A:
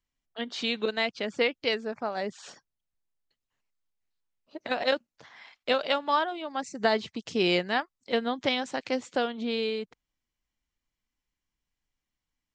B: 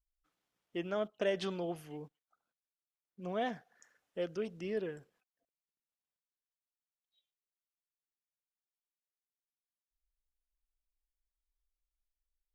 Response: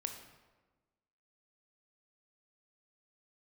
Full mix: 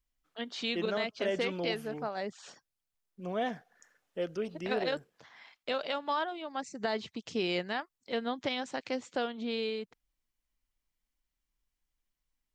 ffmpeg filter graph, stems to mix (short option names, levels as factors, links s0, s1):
-filter_complex "[0:a]volume=0.596[s0];[1:a]volume=1.33[s1];[s0][s1]amix=inputs=2:normalize=0,alimiter=limit=0.0841:level=0:latency=1:release=67"